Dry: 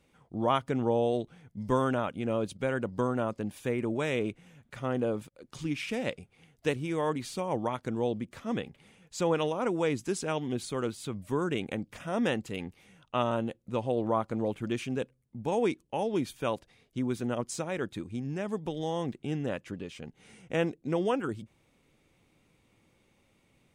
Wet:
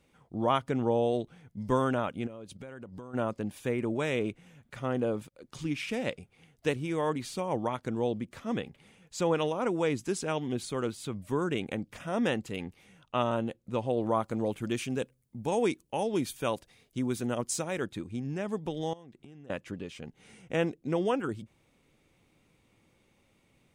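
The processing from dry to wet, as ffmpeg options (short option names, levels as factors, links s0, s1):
-filter_complex "[0:a]asplit=3[s0][s1][s2];[s0]afade=t=out:st=2.26:d=0.02[s3];[s1]acompressor=threshold=0.01:ratio=8:attack=3.2:release=140:knee=1:detection=peak,afade=t=in:st=2.26:d=0.02,afade=t=out:st=3.13:d=0.02[s4];[s2]afade=t=in:st=3.13:d=0.02[s5];[s3][s4][s5]amix=inputs=3:normalize=0,asettb=1/sr,asplit=3[s6][s7][s8];[s6]atrim=end=14.014[s9];[s7]atrim=start=14.01:end=17.86,asetpts=PTS-STARTPTS,afade=t=in:d=0.004:c=qsin,afade=t=out:st=3.846:d=0.004:c=qsin,highshelf=f=6000:g=9.5[s10];[s8]atrim=start=17.856[s11];[s9][s10]acrossfade=d=0.004:c1=hsin:c2=qsin[s12];[s12][s11]acrossfade=d=0.004:c1=qsin:c2=hsin,asettb=1/sr,asplit=3[s13][s14][s15];[s13]atrim=end=18.934[s16];[s14]atrim=start=18.93:end=19.5,asetpts=PTS-STARTPTS,afade=t=in:d=0.004:c=qsin,afade=t=out:st=0.566:d=0.004:c=qsin,acompressor=threshold=0.00501:ratio=16:attack=3.2:release=140:knee=1:detection=peak[s17];[s15]atrim=start=19.496[s18];[s16][s17]acrossfade=d=0.004:c1=hsin:c2=qsin[s19];[s19][s18]acrossfade=d=0.004:c1=qsin:c2=hsin"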